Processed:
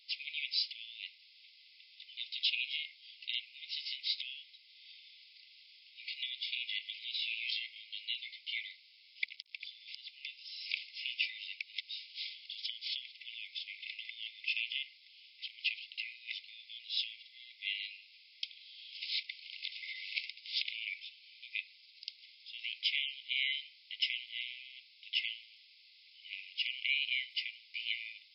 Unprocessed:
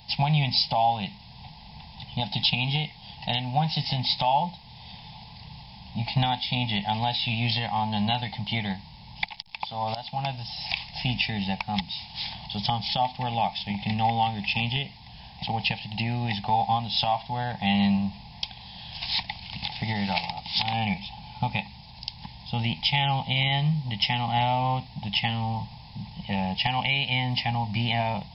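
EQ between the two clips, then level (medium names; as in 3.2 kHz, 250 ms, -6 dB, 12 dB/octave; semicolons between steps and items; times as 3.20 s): brick-wall FIR high-pass 2 kHz; tilt EQ -3.5 dB/octave; -2.0 dB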